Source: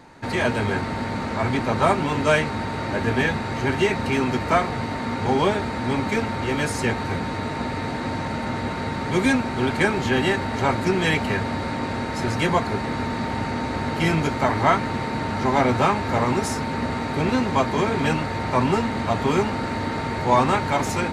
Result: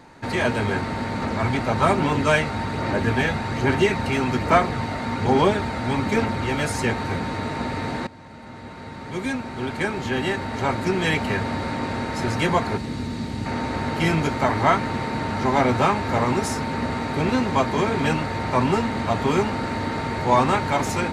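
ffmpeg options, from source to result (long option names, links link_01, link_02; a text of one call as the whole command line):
ffmpeg -i in.wav -filter_complex "[0:a]asettb=1/sr,asplit=3[link_01][link_02][link_03];[link_01]atrim=end=1.224[link_04];[link_02]atrim=start=1.22:end=6.82,asetpts=PTS-STARTPTS,afade=type=in:duration=0.004:curve=qsin,afade=type=out:start_time=5.596:duration=0.004:curve=qsin,aphaser=in_gain=1:out_gain=1:delay=1.5:decay=0.26:speed=1.2:type=sinusoidal[link_05];[link_03]atrim=start=6.816[link_06];[link_04][link_05]acrossfade=duration=0.004:curve1=hsin:curve2=qsin[link_07];[link_07][link_06]acrossfade=duration=0.004:curve1=qsin:curve2=hsin,asettb=1/sr,asplit=3[link_08][link_09][link_10];[link_08]atrim=end=12.774[link_11];[link_09]atrim=start=12.77:end=13.46,asetpts=PTS-STARTPTS,afade=type=in:duration=0.004:curve=qsin,afade=type=out:start_time=0.686:duration=0.004:curve=qsin,acrossover=split=370|3000[link_12][link_13][link_14];[link_13]acompressor=threshold=-39dB:ratio=6:attack=3.2:release=140:knee=2.83:detection=peak[link_15];[link_12][link_15][link_14]amix=inputs=3:normalize=0[link_16];[link_10]atrim=start=13.456[link_17];[link_11][link_16]acrossfade=duration=0.004:curve1=hsin:curve2=qsin[link_18];[link_18][link_17]acrossfade=duration=0.004:curve1=qsin:curve2=hsin,asplit=2[link_19][link_20];[link_19]atrim=end=8.07,asetpts=PTS-STARTPTS,afade=type=out:start_time=8.066:duration=0.004:curve=hsin:silence=0.112202[link_21];[link_20]atrim=start=8.07,asetpts=PTS-STARTPTS,afade=type=in:duration=3.42:silence=0.112202[link_22];[link_21][link_22]concat=n=2:v=0:a=1" out.wav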